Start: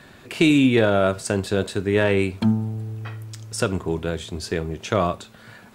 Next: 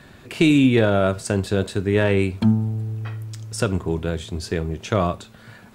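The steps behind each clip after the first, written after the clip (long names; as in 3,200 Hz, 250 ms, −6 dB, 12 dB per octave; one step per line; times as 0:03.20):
low-shelf EQ 180 Hz +6.5 dB
level −1 dB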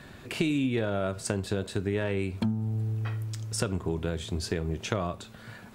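downward compressor 5 to 1, threshold −24 dBFS, peak gain reduction 11.5 dB
level −1.5 dB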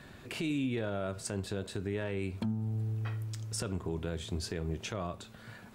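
brickwall limiter −20.5 dBFS, peak gain reduction 8.5 dB
level −4 dB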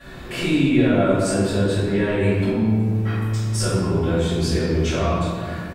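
double-tracking delay 16 ms −11.5 dB
convolution reverb RT60 1.9 s, pre-delay 3 ms, DRR −19 dB
level −4 dB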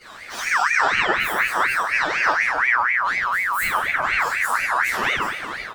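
partials spread apart or drawn together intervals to 121%
ring modulator whose carrier an LFO sweeps 1,600 Hz, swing 35%, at 4.1 Hz
level +3.5 dB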